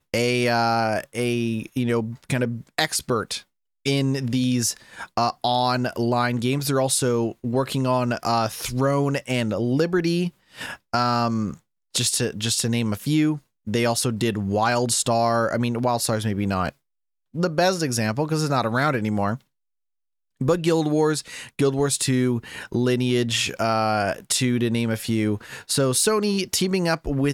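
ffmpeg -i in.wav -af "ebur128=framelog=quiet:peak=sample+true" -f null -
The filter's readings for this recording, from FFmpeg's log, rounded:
Integrated loudness:
  I:         -22.9 LUFS
  Threshold: -33.0 LUFS
Loudness range:
  LRA:         2.0 LU
  Threshold: -43.3 LUFS
  LRA low:   -24.3 LUFS
  LRA high:  -22.2 LUFS
Sample peak:
  Peak:       -5.4 dBFS
True peak:
  Peak:       -5.3 dBFS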